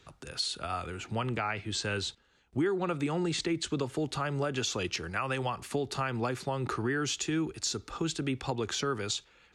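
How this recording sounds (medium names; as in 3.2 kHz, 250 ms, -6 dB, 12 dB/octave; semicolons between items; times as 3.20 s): noise floor -64 dBFS; spectral tilt -4.0 dB/octave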